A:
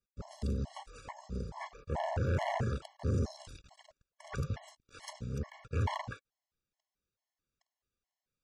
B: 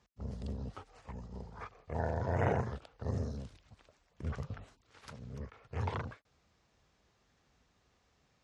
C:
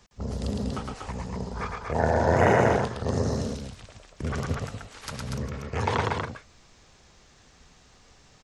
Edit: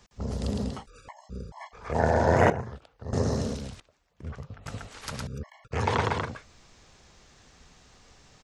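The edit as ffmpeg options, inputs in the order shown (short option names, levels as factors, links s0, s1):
-filter_complex "[0:a]asplit=2[s0][s1];[1:a]asplit=2[s2][s3];[2:a]asplit=5[s4][s5][s6][s7][s8];[s4]atrim=end=0.87[s9];[s0]atrim=start=0.63:end=1.96[s10];[s5]atrim=start=1.72:end=2.502[s11];[s2]atrim=start=2.498:end=3.132[s12];[s6]atrim=start=3.128:end=3.802[s13];[s3]atrim=start=3.798:end=4.662[s14];[s7]atrim=start=4.658:end=5.272[s15];[s1]atrim=start=5.268:end=5.722[s16];[s8]atrim=start=5.718[s17];[s9][s10]acrossfade=d=0.24:c1=tri:c2=tri[s18];[s18][s11]acrossfade=d=0.24:c1=tri:c2=tri[s19];[s19][s12]acrossfade=d=0.004:c1=hsin:c2=hsin[s20];[s20][s13]acrossfade=d=0.004:c1=hsin:c2=hsin[s21];[s21][s14]acrossfade=d=0.004:c1=hsin:c2=hsin[s22];[s22][s15]acrossfade=d=0.004:c1=hsin:c2=hsin[s23];[s23][s16]acrossfade=d=0.004:c1=hsin:c2=hsin[s24];[s24][s17]acrossfade=d=0.004:c1=hsin:c2=hsin"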